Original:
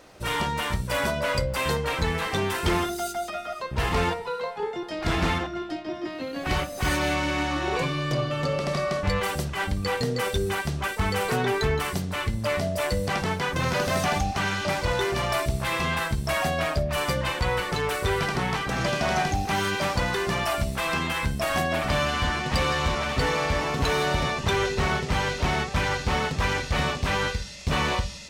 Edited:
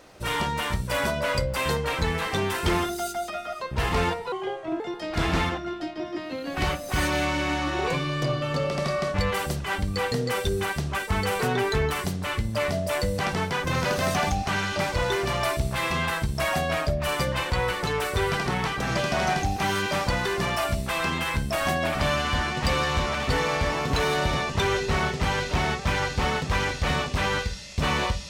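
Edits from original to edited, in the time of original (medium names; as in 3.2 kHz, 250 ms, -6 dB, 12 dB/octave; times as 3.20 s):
4.32–4.69 s: speed 77%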